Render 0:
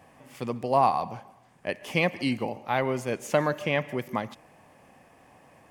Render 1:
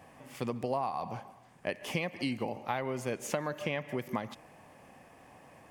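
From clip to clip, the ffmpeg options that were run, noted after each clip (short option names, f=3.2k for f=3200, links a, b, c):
-af "acompressor=threshold=-29dB:ratio=10"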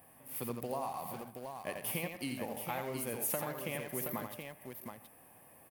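-filter_complex "[0:a]aexciter=amount=11.5:drive=6.8:freq=9.7k,aecho=1:1:85|122|724:0.501|0.106|0.473,asplit=2[a][b];[b]acrusher=bits=5:mix=0:aa=0.000001,volume=-11dB[c];[a][c]amix=inputs=2:normalize=0,volume=-8.5dB"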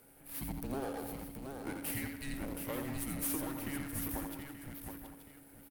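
-af "aeval=exprs='if(lt(val(0),0),0.251*val(0),val(0))':c=same,aecho=1:1:194|880:0.119|0.251,afreqshift=-280,volume=2.5dB"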